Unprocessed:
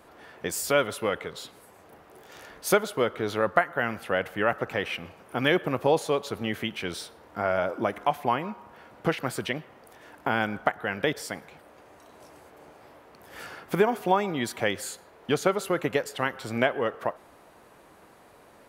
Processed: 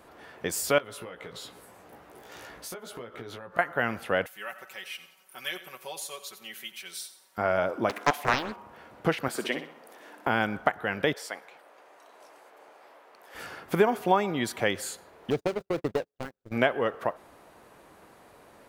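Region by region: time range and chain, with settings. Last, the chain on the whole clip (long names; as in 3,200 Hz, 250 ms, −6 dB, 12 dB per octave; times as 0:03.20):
0:00.78–0:03.59: downward compressor 8 to 1, threshold −38 dBFS + double-tracking delay 17 ms −5 dB
0:04.26–0:07.38: first-order pre-emphasis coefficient 0.97 + comb filter 5.3 ms, depth 80% + repeating echo 90 ms, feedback 40%, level −14 dB
0:07.89–0:08.56: linear-phase brick-wall high-pass 190 Hz + high-shelf EQ 2,100 Hz +8.5 dB + highs frequency-modulated by the lows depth 0.86 ms
0:09.28–0:10.27: high-pass filter 210 Hz 24 dB per octave + flutter between parallel walls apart 10.8 metres, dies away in 0.43 s
0:11.14–0:13.35: high-pass filter 520 Hz + high-shelf EQ 5,100 Hz −5 dB
0:15.30–0:16.52: running median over 41 samples + noise gate −36 dBFS, range −41 dB + parametric band 190 Hz −5.5 dB 0.21 octaves
whole clip: no processing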